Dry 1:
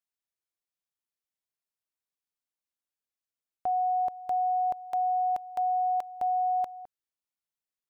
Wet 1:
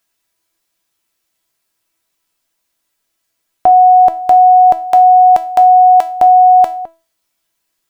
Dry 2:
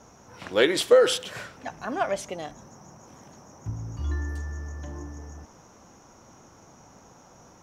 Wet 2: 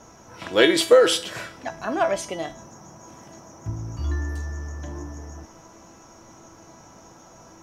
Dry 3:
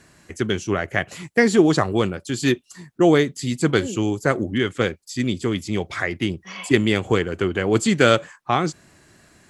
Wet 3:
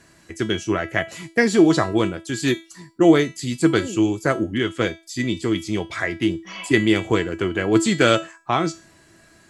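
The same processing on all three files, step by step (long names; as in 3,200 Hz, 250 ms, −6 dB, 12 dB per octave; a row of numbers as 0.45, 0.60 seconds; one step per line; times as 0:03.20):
tuned comb filter 330 Hz, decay 0.32 s, harmonics all, mix 80%
normalise the peak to −1.5 dBFS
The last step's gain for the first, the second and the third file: +34.0, +15.5, +11.0 decibels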